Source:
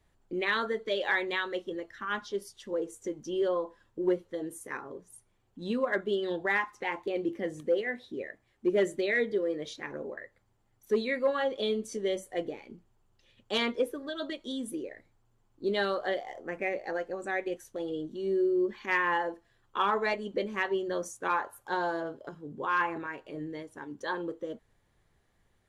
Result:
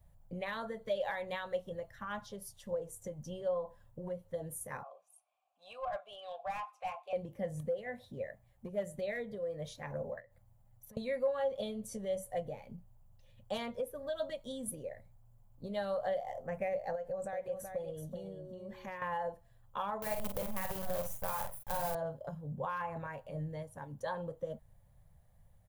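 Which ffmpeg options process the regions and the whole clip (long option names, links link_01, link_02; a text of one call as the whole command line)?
ffmpeg -i in.wav -filter_complex "[0:a]asettb=1/sr,asplit=3[link_01][link_02][link_03];[link_01]atrim=end=4.834[link_04];[link_02]atrim=start=4.83:end=7.13,asetpts=PTS-STARTPTS,afade=type=in:duration=0.004:curve=qsin,afade=type=out:start_time=2.296:duration=0.004:curve=qsin,asplit=3[link_05][link_06][link_07];[link_05]bandpass=frequency=730:width_type=q:width=8,volume=0dB[link_08];[link_06]bandpass=frequency=1090:width_type=q:width=8,volume=-6dB[link_09];[link_07]bandpass=frequency=2440:width_type=q:width=8,volume=-9dB[link_10];[link_08][link_09][link_10]amix=inputs=3:normalize=0,aderivative,asplit=2[link_11][link_12];[link_12]highpass=frequency=720:poles=1,volume=33dB,asoftclip=type=tanh:threshold=-24.5dB[link_13];[link_11][link_13]amix=inputs=2:normalize=0,lowpass=frequency=3000:poles=1,volume=-6dB[link_14];[link_03]atrim=start=7.126[link_15];[link_04][link_14]acrossfade=duration=0.004:curve1=hsin:curve2=qsin[link_16];[link_16][link_15]acrossfade=duration=0.004:curve1=qsin:curve2=hsin,asettb=1/sr,asplit=3[link_17][link_18][link_19];[link_17]atrim=end=10.204[link_20];[link_18]atrim=start=10.2:end=10.97,asetpts=PTS-STARTPTS,afade=type=in:duration=0.004:curve=qsin,afade=type=out:start_time=0.766:duration=0.004:curve=qsin,bandreject=frequency=410:width=6.1,acompressor=threshold=-54dB:ratio=4:attack=3.2:release=140:knee=1:detection=peak[link_21];[link_19]atrim=start=10.966[link_22];[link_20][link_21]acrossfade=duration=0.004:curve1=hsin:curve2=qsin[link_23];[link_23][link_22]acrossfade=duration=0.004:curve1=qsin:curve2=hsin,asettb=1/sr,asplit=3[link_24][link_25][link_26];[link_24]atrim=end=16.954[link_27];[link_25]atrim=start=16.95:end=19.02,asetpts=PTS-STARTPTS,afade=type=in:duration=0.004:curve=qsin,afade=type=out:start_time=2.066:duration=0.004:curve=qsin,equalizer=frequency=540:width=4.7:gain=5.5,acompressor=threshold=-35dB:ratio=12:attack=3.2:release=140:knee=1:detection=peak,aecho=1:1:378:0.501,atrim=end_sample=91287[link_28];[link_26]atrim=start=19.016[link_29];[link_27][link_28]acrossfade=duration=0.004:curve1=hsin:curve2=qsin[link_30];[link_30][link_29]acrossfade=duration=0.004:curve1=qsin:curve2=hsin,asettb=1/sr,asplit=3[link_31][link_32][link_33];[link_31]atrim=end=20.024[link_34];[link_32]atrim=start=20.02:end=21.95,asetpts=PTS-STARTPTS,afade=type=in:duration=0.004:curve=qsin,afade=type=out:start_time=1.926:duration=0.004:curve=qsin,acrusher=bits=6:dc=4:mix=0:aa=0.000001,acompressor=threshold=-29dB:ratio=6:attack=3.2:release=140:knee=1:detection=peak,asplit=2[link_35][link_36];[link_36]adelay=47,volume=-5.5dB[link_37];[link_35][link_37]amix=inputs=2:normalize=0,atrim=end_sample=85113[link_38];[link_33]atrim=start=21.946[link_39];[link_34][link_38]acrossfade=duration=0.004:curve1=hsin:curve2=qsin[link_40];[link_40][link_39]acrossfade=duration=0.004:curve1=qsin:curve2=hsin,equalizer=frequency=6500:width_type=o:width=2.7:gain=-8.5,acompressor=threshold=-32dB:ratio=6,firequalizer=gain_entry='entry(150,0);entry(340,-29);entry(550,-4);entry(1300,-15);entry(11000,3)':delay=0.05:min_phase=1,volume=9dB" out.wav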